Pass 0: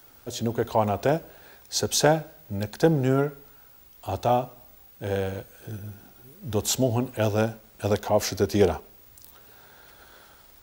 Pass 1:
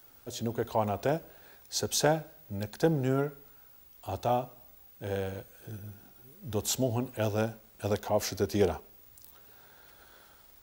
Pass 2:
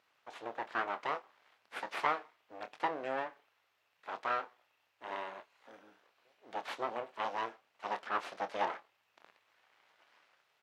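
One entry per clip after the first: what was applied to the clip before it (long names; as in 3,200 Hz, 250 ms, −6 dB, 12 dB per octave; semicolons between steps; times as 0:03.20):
high-shelf EQ 11,000 Hz +3.5 dB; level −6 dB
full-wave rectification; band-pass filter 590–2,800 Hz; double-tracking delay 26 ms −11 dB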